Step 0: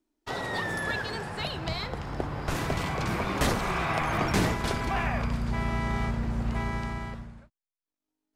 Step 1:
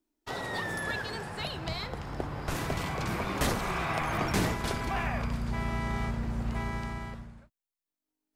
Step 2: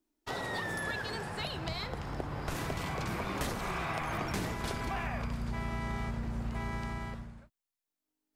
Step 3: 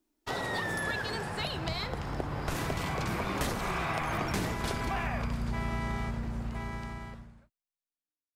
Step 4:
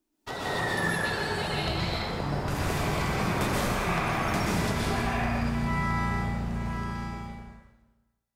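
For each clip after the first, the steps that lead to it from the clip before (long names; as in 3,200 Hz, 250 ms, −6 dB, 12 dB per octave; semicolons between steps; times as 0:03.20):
high-shelf EQ 9,900 Hz +6 dB; level −3 dB
downward compressor 4 to 1, threshold −32 dBFS, peak gain reduction 8 dB
fade-out on the ending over 2.62 s; level +3 dB
dense smooth reverb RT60 1.2 s, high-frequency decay 0.9×, pre-delay 110 ms, DRR −5 dB; level −1.5 dB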